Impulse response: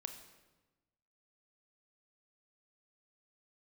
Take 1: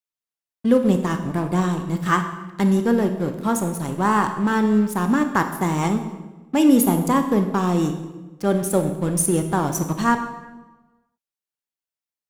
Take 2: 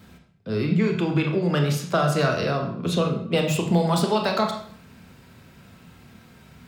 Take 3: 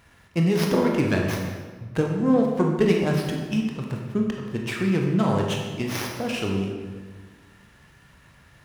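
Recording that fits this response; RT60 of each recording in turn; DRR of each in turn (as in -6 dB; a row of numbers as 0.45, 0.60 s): 1; 1.1, 0.65, 1.5 s; 6.5, 2.5, 0.5 dB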